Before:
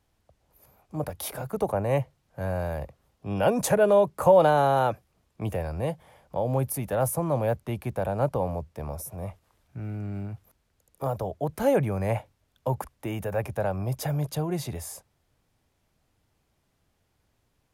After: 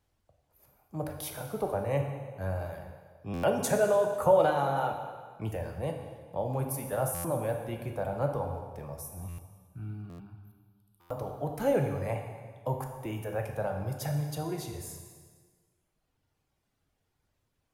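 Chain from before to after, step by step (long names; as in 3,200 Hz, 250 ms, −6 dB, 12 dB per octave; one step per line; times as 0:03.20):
reverb reduction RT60 1.6 s
0:09.18–0:11.06: phaser with its sweep stopped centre 2,000 Hz, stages 6
dense smooth reverb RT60 1.6 s, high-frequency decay 0.9×, DRR 2.5 dB
buffer that repeats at 0:03.33/0:07.14/0:09.28/0:10.09/0:11.00, samples 512, times 8
level −5 dB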